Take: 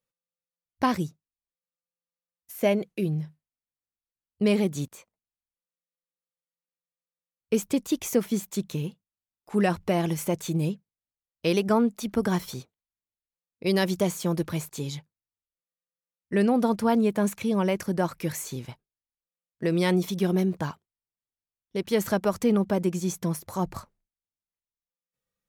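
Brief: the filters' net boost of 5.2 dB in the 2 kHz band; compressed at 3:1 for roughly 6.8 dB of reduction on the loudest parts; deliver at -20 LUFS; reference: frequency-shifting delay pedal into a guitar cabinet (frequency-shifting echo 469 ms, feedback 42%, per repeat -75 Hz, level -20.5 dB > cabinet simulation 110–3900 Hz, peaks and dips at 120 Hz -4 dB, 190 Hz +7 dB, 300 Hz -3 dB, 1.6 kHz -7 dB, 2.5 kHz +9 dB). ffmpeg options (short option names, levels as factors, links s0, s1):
-filter_complex "[0:a]equalizer=f=2000:t=o:g=3.5,acompressor=threshold=0.0447:ratio=3,asplit=4[s0][s1][s2][s3];[s1]adelay=469,afreqshift=-75,volume=0.0944[s4];[s2]adelay=938,afreqshift=-150,volume=0.0398[s5];[s3]adelay=1407,afreqshift=-225,volume=0.0166[s6];[s0][s4][s5][s6]amix=inputs=4:normalize=0,highpass=110,equalizer=f=120:t=q:w=4:g=-4,equalizer=f=190:t=q:w=4:g=7,equalizer=f=300:t=q:w=4:g=-3,equalizer=f=1600:t=q:w=4:g=-7,equalizer=f=2500:t=q:w=4:g=9,lowpass=f=3900:w=0.5412,lowpass=f=3900:w=1.3066,volume=3.16"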